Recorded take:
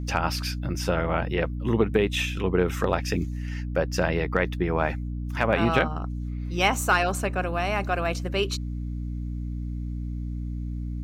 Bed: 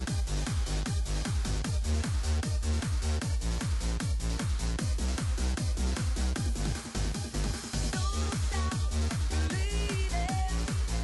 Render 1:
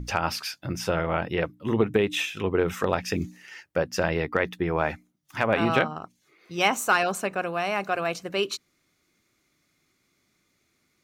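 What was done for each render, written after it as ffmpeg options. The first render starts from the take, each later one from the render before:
ffmpeg -i in.wav -af "bandreject=frequency=60:width_type=h:width=6,bandreject=frequency=120:width_type=h:width=6,bandreject=frequency=180:width_type=h:width=6,bandreject=frequency=240:width_type=h:width=6,bandreject=frequency=300:width_type=h:width=6" out.wav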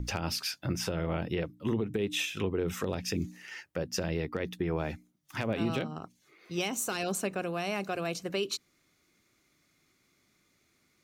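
ffmpeg -i in.wav -filter_complex "[0:a]acrossover=split=470|3000[link_01][link_02][link_03];[link_02]acompressor=threshold=-39dB:ratio=4[link_04];[link_01][link_04][link_03]amix=inputs=3:normalize=0,alimiter=limit=-20.5dB:level=0:latency=1:release=189" out.wav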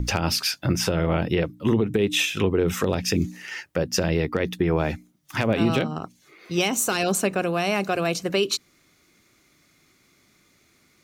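ffmpeg -i in.wav -af "volume=9.5dB" out.wav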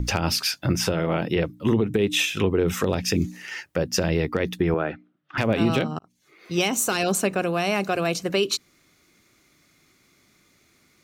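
ffmpeg -i in.wav -filter_complex "[0:a]asettb=1/sr,asplit=3[link_01][link_02][link_03];[link_01]atrim=end=0.934[link_04];[link_02]atrim=start=0.93:end=1.36,asetpts=PTS-STARTPTS,afade=type=in:duration=0.004:curve=qsin,afade=type=out:start_time=0.426:duration=0.004:curve=qsin,equalizer=frequency=83:width_type=o:width=0.77:gain=-13.5[link_05];[link_03]atrim=start=1.356[link_06];[link_04][link_05]acrossfade=duration=0.004:curve1=hsin:curve2=qsin[link_07];[link_07][link_06]acrossfade=duration=0.004:curve1=qsin:curve2=hsin,asettb=1/sr,asplit=3[link_08][link_09][link_10];[link_08]atrim=end=4.744[link_11];[link_09]atrim=start=4.74:end=5.38,asetpts=PTS-STARTPTS,afade=type=in:duration=0.004:curve=qsin,afade=type=out:start_time=0.636:duration=0.004:curve=qsin,highpass=200,equalizer=frequency=210:width_type=q:width=4:gain=-7,equalizer=frequency=920:width_type=q:width=4:gain=-6,equalizer=frequency=1400:width_type=q:width=4:gain=6,equalizer=frequency=2200:width_type=q:width=4:gain=-7,lowpass=frequency=2800:width=0.5412,lowpass=frequency=2800:width=1.3066[link_12];[link_10]atrim=start=5.376[link_13];[link_11][link_12]acrossfade=duration=0.004:curve1=hsin:curve2=qsin[link_14];[link_14][link_13]acrossfade=duration=0.004:curve1=qsin:curve2=hsin,asplit=2[link_15][link_16];[link_15]atrim=end=5.99,asetpts=PTS-STARTPTS,afade=type=out:start_time=5.986:duration=0.004:curve=hsin[link_17];[link_16]atrim=start=5.99,asetpts=PTS-STARTPTS,afade=type=in:duration=0.54[link_18];[link_17][link_18]concat=n=2:v=0:a=1" out.wav

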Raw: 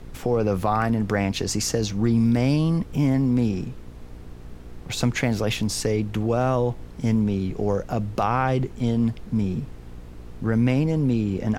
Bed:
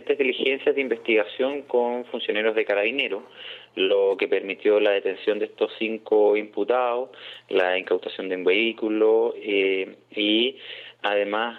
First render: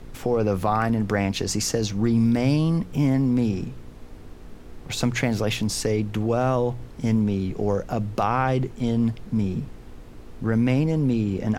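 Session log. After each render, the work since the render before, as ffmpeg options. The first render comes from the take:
ffmpeg -i in.wav -af "bandreject=frequency=60:width_type=h:width=4,bandreject=frequency=120:width_type=h:width=4,bandreject=frequency=180:width_type=h:width=4" out.wav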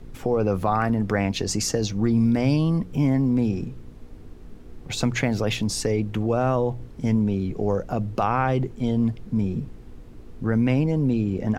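ffmpeg -i in.wav -af "afftdn=noise_reduction=6:noise_floor=-42" out.wav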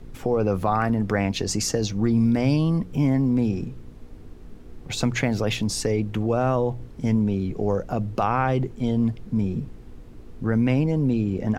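ffmpeg -i in.wav -af anull out.wav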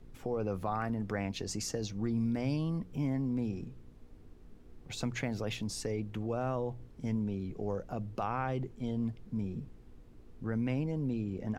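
ffmpeg -i in.wav -af "volume=-12dB" out.wav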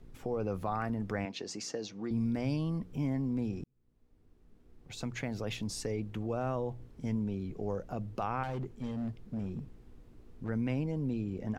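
ffmpeg -i in.wav -filter_complex "[0:a]asettb=1/sr,asplit=3[link_01][link_02][link_03];[link_01]atrim=end=1.254[link_04];[link_02]atrim=start=1.25:end=2.11,asetpts=PTS-STARTPTS,afade=type=in:duration=0.004:curve=qsin,afade=type=out:start_time=0.856:duration=0.004:curve=qsin,highpass=260,lowpass=6100[link_05];[link_03]atrim=start=2.106[link_06];[link_04][link_05]acrossfade=duration=0.004:curve1=hsin:curve2=qsin[link_07];[link_07][link_06]acrossfade=duration=0.004:curve1=qsin:curve2=hsin,asettb=1/sr,asplit=3[link_08][link_09][link_10];[link_08]atrim=end=8.434[link_11];[link_09]atrim=start=8.43:end=10.49,asetpts=PTS-STARTPTS,afade=type=in:duration=0.004:curve=qsin,afade=type=out:start_time=2.056:duration=0.004:curve=qsin,volume=32dB,asoftclip=hard,volume=-32dB[link_12];[link_10]atrim=start=10.486[link_13];[link_11][link_12]acrossfade=duration=0.004:curve1=hsin:curve2=qsin[link_14];[link_14][link_13]acrossfade=duration=0.004:curve1=qsin:curve2=hsin,asplit=2[link_15][link_16];[link_15]atrim=end=3.64,asetpts=PTS-STARTPTS,afade=type=out:start_time=3.636:duration=0.004:curve=hsin[link_17];[link_16]atrim=start=3.64,asetpts=PTS-STARTPTS,afade=type=in:duration=2[link_18];[link_17][link_18]concat=n=2:v=0:a=1" out.wav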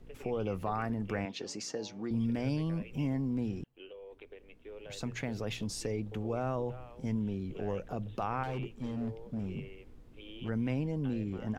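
ffmpeg -i in.wav -i bed.wav -filter_complex "[1:a]volume=-29dB[link_01];[0:a][link_01]amix=inputs=2:normalize=0" out.wav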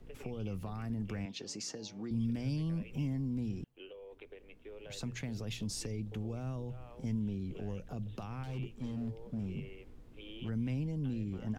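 ffmpeg -i in.wav -filter_complex "[0:a]acrossover=split=250|3000[link_01][link_02][link_03];[link_02]acompressor=threshold=-47dB:ratio=6[link_04];[link_01][link_04][link_03]amix=inputs=3:normalize=0" out.wav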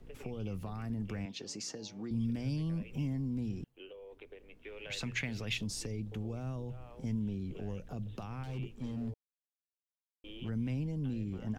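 ffmpeg -i in.wav -filter_complex "[0:a]asettb=1/sr,asplit=3[link_01][link_02][link_03];[link_01]atrim=end=4.634[link_04];[link_02]atrim=start=4.63:end=5.58,asetpts=PTS-STARTPTS,afade=type=in:duration=0.004:curve=qsin,afade=type=out:start_time=0.946:duration=0.004:curve=qsin,equalizer=frequency=2300:width=0.88:gain=12[link_05];[link_03]atrim=start=5.576[link_06];[link_04][link_05]acrossfade=duration=0.004:curve1=hsin:curve2=qsin[link_07];[link_07][link_06]acrossfade=duration=0.004:curve1=qsin:curve2=hsin,asplit=3[link_08][link_09][link_10];[link_08]atrim=end=9.14,asetpts=PTS-STARTPTS,afade=type=out:start_time=9.136:duration=0.004:curve=hsin[link_11];[link_09]atrim=start=9.14:end=10.24,asetpts=PTS-STARTPTS,volume=0[link_12];[link_10]atrim=start=10.24,asetpts=PTS-STARTPTS,afade=type=in:duration=0.004:curve=hsin[link_13];[link_11][link_12][link_13]concat=n=3:v=0:a=1" out.wav

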